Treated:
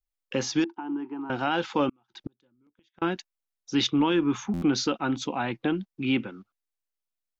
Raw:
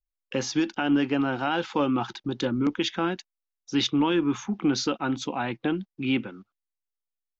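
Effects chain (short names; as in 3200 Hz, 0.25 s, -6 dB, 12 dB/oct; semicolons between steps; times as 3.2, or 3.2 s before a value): 0.64–1.3 double band-pass 560 Hz, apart 1.4 oct; 1.89–3.02 flipped gate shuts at -23 dBFS, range -41 dB; stuck buffer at 4.53, samples 512, times 7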